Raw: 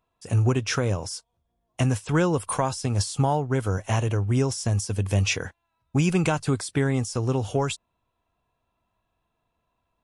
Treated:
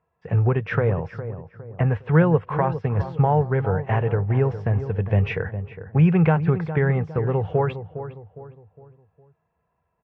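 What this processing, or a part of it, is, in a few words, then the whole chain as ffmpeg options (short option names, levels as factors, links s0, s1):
bass cabinet: -filter_complex "[0:a]highpass=61,equalizer=f=73:t=q:w=4:g=9,equalizer=f=160:t=q:w=4:g=10,equalizer=f=280:t=q:w=4:g=-9,equalizer=f=460:t=q:w=4:g=8,equalizer=f=810:t=q:w=4:g=4,equalizer=f=1800:t=q:w=4:g=6,lowpass=f=2300:w=0.5412,lowpass=f=2300:w=1.3066,asettb=1/sr,asplit=3[s0][s1][s2];[s0]atrim=end=0.924[s3];[s1]atrim=start=0.92:end=1.88,asetpts=PTS-STARTPTS,afade=t=in:d=0.004:c=qsin,afade=t=out:st=0.956:d=0.004:c=qsin,acrossover=split=2600[s4][s5];[s5]acompressor=threshold=0.00141:ratio=4:attack=1:release=60[s6];[s4][s6]amix=inputs=2:normalize=0[s7];[s2]atrim=start=1.876[s8];[s3][s7]acrossfade=d=0.004:c1=hsin:c2=qsin[s9];[s9][s8]acrossfade=d=0.004:c1=qsin:c2=hsin,asplit=2[s10][s11];[s11]adelay=409,lowpass=f=1300:p=1,volume=0.282,asplit=2[s12][s13];[s13]adelay=409,lowpass=f=1300:p=1,volume=0.43,asplit=2[s14][s15];[s15]adelay=409,lowpass=f=1300:p=1,volume=0.43,asplit=2[s16][s17];[s17]adelay=409,lowpass=f=1300:p=1,volume=0.43[s18];[s10][s12][s14][s16][s18]amix=inputs=5:normalize=0"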